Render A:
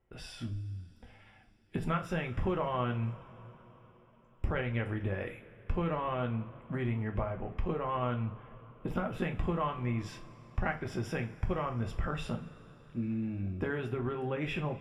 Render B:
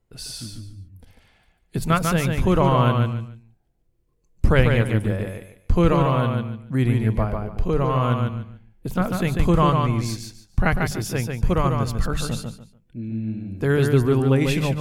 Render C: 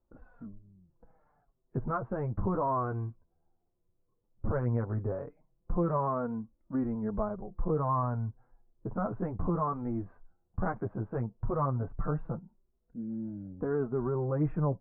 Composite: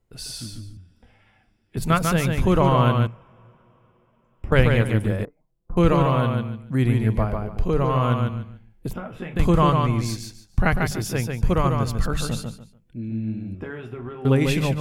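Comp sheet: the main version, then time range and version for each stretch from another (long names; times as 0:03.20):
B
0:00.77–0:01.77: punch in from A
0:03.07–0:04.52: punch in from A
0:05.25–0:05.77: punch in from C
0:08.93–0:09.36: punch in from A
0:13.55–0:14.25: punch in from A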